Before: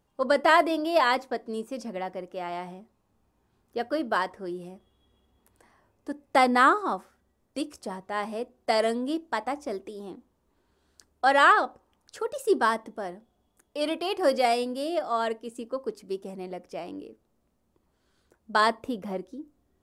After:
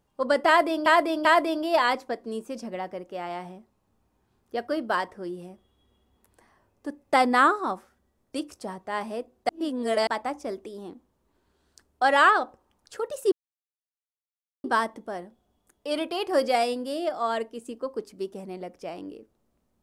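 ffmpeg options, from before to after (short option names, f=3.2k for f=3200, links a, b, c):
-filter_complex "[0:a]asplit=6[a][b][c][d][e][f];[a]atrim=end=0.862[g];[b]atrim=start=0.468:end=0.862[h];[c]atrim=start=0.468:end=8.712[i];[d]atrim=start=8.708:end=9.292,asetpts=PTS-STARTPTS,areverse[j];[e]atrim=start=9.288:end=12.54,asetpts=PTS-STARTPTS,afade=t=out:st=3.248:d=0.004:c=hsin,apad=pad_dur=1.32[k];[f]atrim=start=12.54,asetpts=PTS-STARTPTS,afade=t=in:d=0.004:c=hsin[l];[g][h]acrossfade=d=0.004:c1=hsin:c2=hsin[m];[m][i]acrossfade=d=0.004:c1=hsin:c2=hsin[n];[n][j]acrossfade=d=0.004:c1=hsin:c2=hsin[o];[k][l]concat=n=2:v=0:a=1[p];[o][p]acrossfade=d=0.004:c1=hsin:c2=hsin"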